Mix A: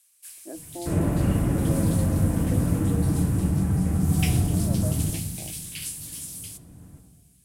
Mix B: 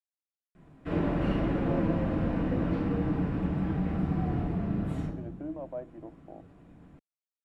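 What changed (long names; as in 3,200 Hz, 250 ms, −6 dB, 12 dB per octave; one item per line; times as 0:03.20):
speech: entry +0.90 s
first sound: muted
master: add parametric band 96 Hz −13 dB 1.5 octaves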